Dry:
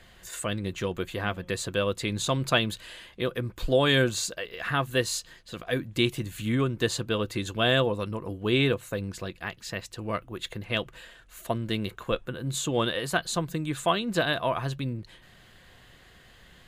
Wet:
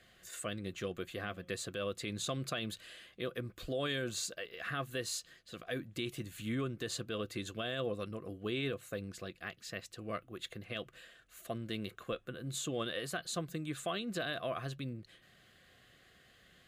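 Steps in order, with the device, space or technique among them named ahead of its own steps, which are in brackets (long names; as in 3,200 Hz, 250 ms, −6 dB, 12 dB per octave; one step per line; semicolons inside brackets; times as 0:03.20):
PA system with an anti-feedback notch (high-pass filter 120 Hz 6 dB per octave; Butterworth band-reject 920 Hz, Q 3.7; brickwall limiter −18.5 dBFS, peak gain reduction 9 dB)
level −8 dB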